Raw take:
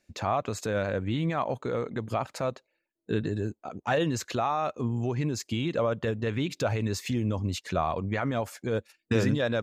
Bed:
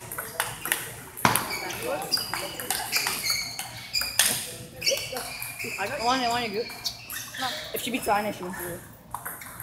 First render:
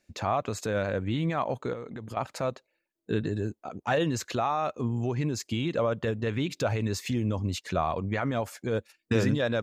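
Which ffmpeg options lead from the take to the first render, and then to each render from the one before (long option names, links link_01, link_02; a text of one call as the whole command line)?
ffmpeg -i in.wav -filter_complex "[0:a]asettb=1/sr,asplit=3[link_01][link_02][link_03];[link_01]atrim=end=1.734[link_04];[link_02]atrim=start=1.73:end=2.17,asetpts=PTS-STARTPTS,afade=type=in:duration=0.004:curve=qsin,afade=type=out:start_time=0.436:duration=0.004:curve=qsin,acompressor=threshold=-35dB:ratio=6:attack=3.2:release=140:knee=1:detection=peak[link_05];[link_03]atrim=start=2.166[link_06];[link_04][link_05]acrossfade=duration=0.004:curve1=hsin:curve2=qsin[link_07];[link_07][link_06]acrossfade=duration=0.004:curve1=qsin:curve2=hsin" out.wav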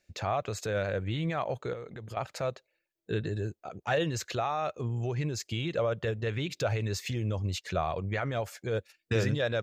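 ffmpeg -i in.wav -af "equalizer=frequency=250:width_type=o:width=0.67:gain=-11,equalizer=frequency=1000:width_type=o:width=0.67:gain=-6,equalizer=frequency=10000:width_type=o:width=0.67:gain=-5" out.wav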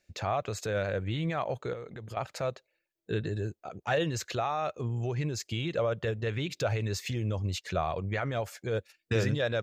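ffmpeg -i in.wav -af anull out.wav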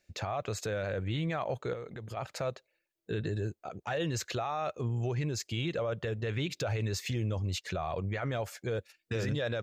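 ffmpeg -i in.wav -af "alimiter=level_in=1dB:limit=-24dB:level=0:latency=1:release=11,volume=-1dB" out.wav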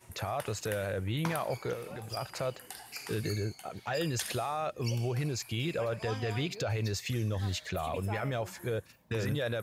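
ffmpeg -i in.wav -i bed.wav -filter_complex "[1:a]volume=-17.5dB[link_01];[0:a][link_01]amix=inputs=2:normalize=0" out.wav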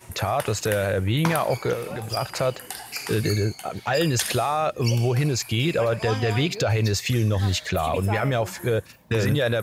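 ffmpeg -i in.wav -af "volume=10.5dB" out.wav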